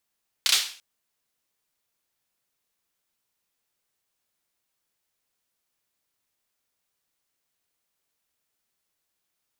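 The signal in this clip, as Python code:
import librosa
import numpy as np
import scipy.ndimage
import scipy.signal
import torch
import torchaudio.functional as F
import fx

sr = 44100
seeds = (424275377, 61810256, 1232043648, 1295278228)

y = fx.drum_clap(sr, seeds[0], length_s=0.34, bursts=3, spacing_ms=31, hz=3700.0, decay_s=0.44)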